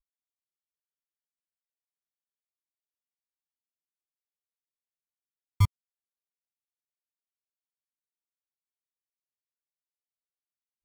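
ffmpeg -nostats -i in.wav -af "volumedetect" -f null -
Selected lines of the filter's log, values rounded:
mean_volume: -41.1 dB
max_volume: -14.0 dB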